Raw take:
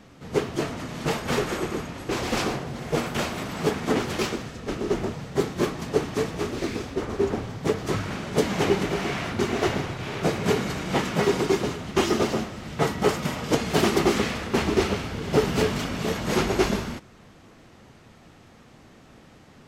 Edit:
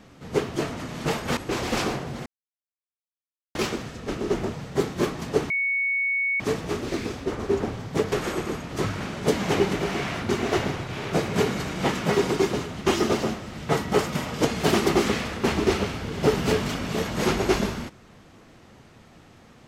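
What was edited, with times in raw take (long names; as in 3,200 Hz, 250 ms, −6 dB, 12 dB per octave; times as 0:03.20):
0:01.37–0:01.97: move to 0:07.82
0:02.86–0:04.15: silence
0:06.10: insert tone 2,220 Hz −21.5 dBFS 0.90 s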